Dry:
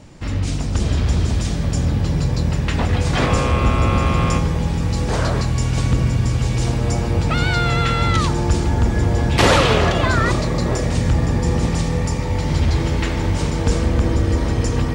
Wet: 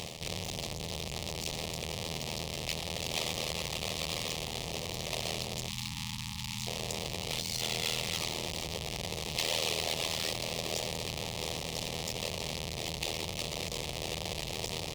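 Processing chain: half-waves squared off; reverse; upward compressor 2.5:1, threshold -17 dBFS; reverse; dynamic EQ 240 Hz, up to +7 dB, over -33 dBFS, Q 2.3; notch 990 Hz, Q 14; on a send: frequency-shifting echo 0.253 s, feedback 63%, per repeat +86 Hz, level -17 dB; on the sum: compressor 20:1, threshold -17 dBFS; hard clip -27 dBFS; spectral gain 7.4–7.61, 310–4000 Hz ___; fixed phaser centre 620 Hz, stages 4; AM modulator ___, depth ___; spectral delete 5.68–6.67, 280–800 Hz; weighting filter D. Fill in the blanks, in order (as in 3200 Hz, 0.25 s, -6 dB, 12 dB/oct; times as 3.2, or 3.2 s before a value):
-7 dB, 80 Hz, 90%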